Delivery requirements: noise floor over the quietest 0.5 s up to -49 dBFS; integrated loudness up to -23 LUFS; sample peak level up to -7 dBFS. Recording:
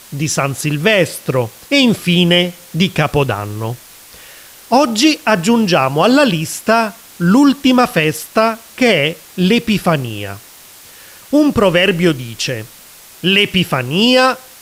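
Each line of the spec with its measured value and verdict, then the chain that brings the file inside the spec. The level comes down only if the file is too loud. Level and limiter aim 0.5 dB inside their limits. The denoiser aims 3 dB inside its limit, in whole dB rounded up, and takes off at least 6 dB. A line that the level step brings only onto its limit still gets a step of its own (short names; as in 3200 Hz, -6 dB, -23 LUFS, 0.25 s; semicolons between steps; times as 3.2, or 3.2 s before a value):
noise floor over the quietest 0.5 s -40 dBFS: fail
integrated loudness -14.0 LUFS: fail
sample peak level -1.5 dBFS: fail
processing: gain -9.5 dB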